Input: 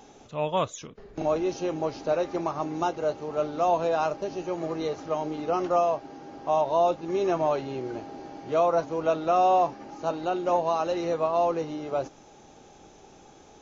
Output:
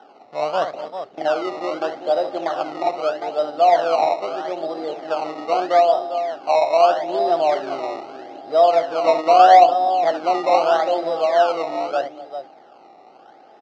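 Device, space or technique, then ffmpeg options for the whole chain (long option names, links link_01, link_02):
circuit-bent sampling toy: -filter_complex "[0:a]asettb=1/sr,asplit=3[link_01][link_02][link_03];[link_01]atrim=end=9.044[link_04];[link_02]atrim=start=9.04:end=10.79,asetpts=PTS-STARTPTS,afade=type=in:duration=0.004:curve=qsin,afade=type=out:start_time=1.746:duration=0.004:curve=qsin,equalizer=frequency=280:width_type=o:width=2.3:gain=4[link_05];[link_03]atrim=start=10.786[link_06];[link_04][link_05]acrossfade=duration=0.004:curve1=hsin:curve2=qsin[link_07];[link_07][link_06]acrossfade=duration=0.004:curve1=qsin:curve2=hsin,aecho=1:1:66|238|397:0.316|0.141|0.335,acrusher=samples=19:mix=1:aa=0.000001:lfo=1:lforange=19:lforate=0.79,highpass=430,equalizer=frequency=430:width_type=q:width=4:gain=-4,equalizer=frequency=720:width_type=q:width=4:gain=8,equalizer=frequency=1000:width_type=q:width=4:gain=-7,equalizer=frequency=1700:width_type=q:width=4:gain=-6,equalizer=frequency=2400:width_type=q:width=4:gain=-10,equalizer=frequency=3500:width_type=q:width=4:gain=-10,lowpass=frequency=4100:width=0.5412,lowpass=frequency=4100:width=1.3066,volume=6dB"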